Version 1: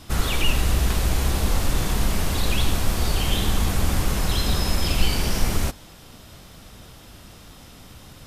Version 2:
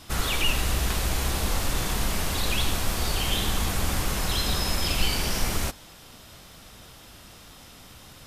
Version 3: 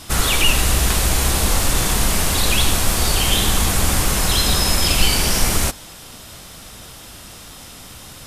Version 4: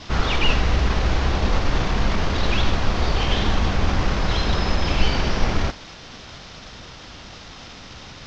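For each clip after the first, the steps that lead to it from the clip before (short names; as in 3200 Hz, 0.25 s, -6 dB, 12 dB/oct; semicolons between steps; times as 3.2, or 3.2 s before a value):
low shelf 490 Hz -6 dB
bell 9200 Hz +5.5 dB 1.1 oct; gain +8 dB
CVSD 32 kbps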